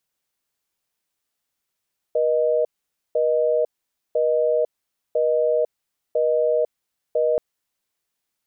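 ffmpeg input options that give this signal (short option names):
-f lavfi -i "aevalsrc='0.106*(sin(2*PI*480*t)+sin(2*PI*620*t))*clip(min(mod(t,1),0.5-mod(t,1))/0.005,0,1)':d=5.23:s=44100"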